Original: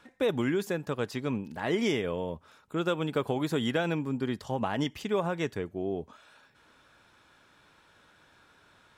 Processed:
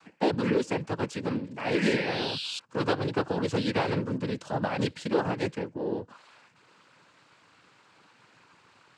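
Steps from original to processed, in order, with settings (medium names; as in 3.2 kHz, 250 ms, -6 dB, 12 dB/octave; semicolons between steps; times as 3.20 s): painted sound rise, 1.74–2.59 s, 1.7–4.4 kHz -38 dBFS; noise-vocoded speech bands 8; trim +2 dB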